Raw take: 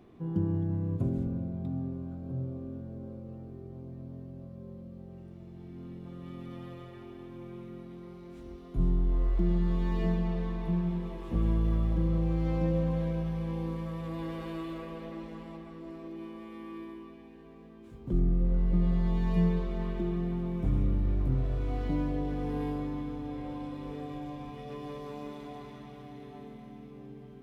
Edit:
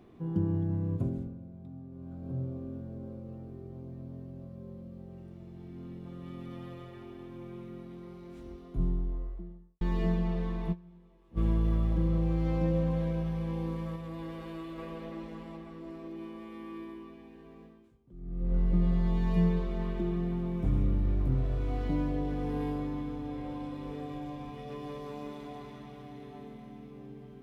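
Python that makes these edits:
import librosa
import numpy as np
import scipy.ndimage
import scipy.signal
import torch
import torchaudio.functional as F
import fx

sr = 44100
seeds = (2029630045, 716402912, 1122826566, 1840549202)

y = fx.studio_fade_out(x, sr, start_s=8.36, length_s=1.45)
y = fx.edit(y, sr, fx.fade_down_up(start_s=0.95, length_s=1.35, db=-11.5, fade_s=0.41),
    fx.fade_down_up(start_s=10.72, length_s=0.66, db=-22.5, fade_s=0.13, curve='exp'),
    fx.clip_gain(start_s=13.96, length_s=0.82, db=-3.5),
    fx.fade_down_up(start_s=17.63, length_s=0.93, db=-23.5, fade_s=0.45, curve='qua'), tone=tone)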